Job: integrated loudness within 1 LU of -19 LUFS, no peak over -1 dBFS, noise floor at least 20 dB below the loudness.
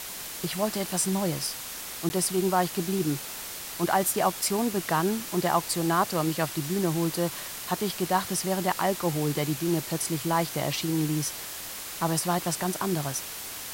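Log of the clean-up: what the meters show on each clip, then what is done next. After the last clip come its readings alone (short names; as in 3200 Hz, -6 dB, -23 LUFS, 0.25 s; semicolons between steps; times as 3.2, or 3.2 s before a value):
dropouts 1; longest dropout 10 ms; noise floor -38 dBFS; noise floor target -48 dBFS; loudness -27.5 LUFS; peak -10.5 dBFS; loudness target -19.0 LUFS
-> interpolate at 2.09, 10 ms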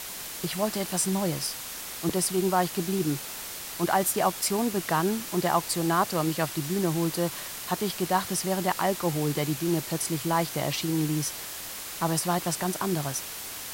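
dropouts 0; noise floor -38 dBFS; noise floor target -48 dBFS
-> denoiser 10 dB, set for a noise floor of -38 dBFS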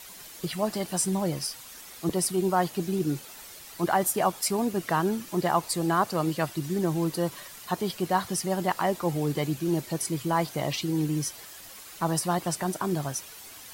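noise floor -46 dBFS; noise floor target -48 dBFS
-> denoiser 6 dB, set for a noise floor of -46 dBFS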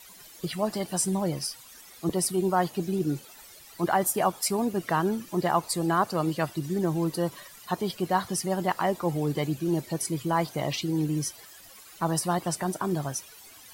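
noise floor -50 dBFS; loudness -28.0 LUFS; peak -11.5 dBFS; loudness target -19.0 LUFS
-> gain +9 dB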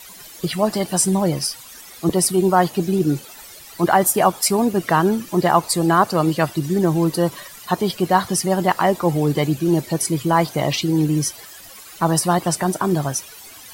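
loudness -19.0 LUFS; peak -2.5 dBFS; noise floor -41 dBFS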